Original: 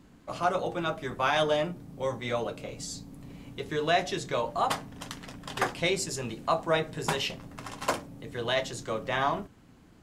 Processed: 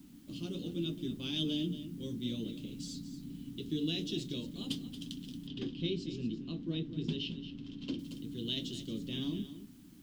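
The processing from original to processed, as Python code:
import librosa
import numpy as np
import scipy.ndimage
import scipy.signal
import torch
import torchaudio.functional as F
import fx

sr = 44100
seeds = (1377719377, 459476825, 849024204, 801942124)

y = fx.curve_eq(x, sr, hz=(100.0, 290.0, 700.0, 1300.0, 2100.0, 3100.0, 7200.0), db=(0, 12, -29, -28, -19, 6, -5))
y = y + 10.0 ** (-12.0 / 20.0) * np.pad(y, (int(228 * sr / 1000.0), 0))[:len(y)]
y = fx.dmg_noise_colour(y, sr, seeds[0], colour='white', level_db=-61.0)
y = fx.air_absorb(y, sr, metres=200.0, at=(5.47, 7.99))
y = F.gain(torch.from_numpy(y), -6.5).numpy()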